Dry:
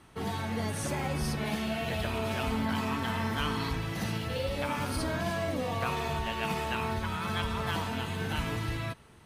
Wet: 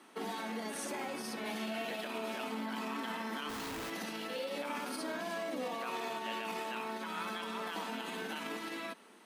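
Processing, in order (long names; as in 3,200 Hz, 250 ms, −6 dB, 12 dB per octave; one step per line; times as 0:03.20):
brickwall limiter −29 dBFS, peak gain reduction 11 dB
Butterworth high-pass 210 Hz 48 dB per octave
0:03.49–0:03.90: comparator with hysteresis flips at −49 dBFS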